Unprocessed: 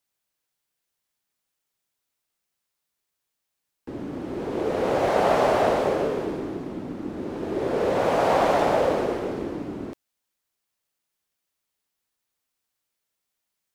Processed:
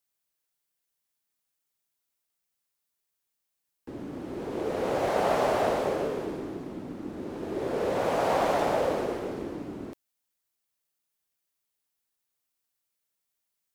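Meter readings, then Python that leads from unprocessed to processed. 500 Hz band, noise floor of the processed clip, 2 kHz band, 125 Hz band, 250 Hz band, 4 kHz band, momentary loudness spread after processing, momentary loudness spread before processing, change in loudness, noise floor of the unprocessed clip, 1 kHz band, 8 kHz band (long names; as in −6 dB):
−5.0 dB, −82 dBFS, −4.5 dB, −5.0 dB, −5.0 dB, −4.0 dB, 14 LU, 14 LU, −5.0 dB, −82 dBFS, −5.0 dB, −2.0 dB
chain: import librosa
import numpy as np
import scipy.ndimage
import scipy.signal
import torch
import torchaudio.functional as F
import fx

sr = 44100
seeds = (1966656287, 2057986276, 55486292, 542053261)

y = fx.high_shelf(x, sr, hz=7700.0, db=6.5)
y = F.gain(torch.from_numpy(y), -5.0).numpy()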